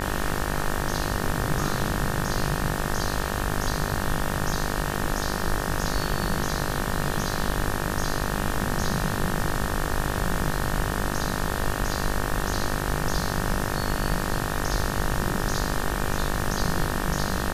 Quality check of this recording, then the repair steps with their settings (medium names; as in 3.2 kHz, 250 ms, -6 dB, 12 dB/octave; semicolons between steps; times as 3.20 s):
buzz 50 Hz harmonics 37 -30 dBFS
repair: de-hum 50 Hz, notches 37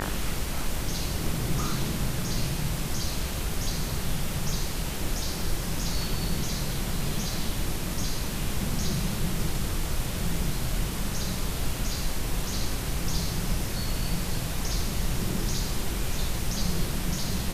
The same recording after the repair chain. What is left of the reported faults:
nothing left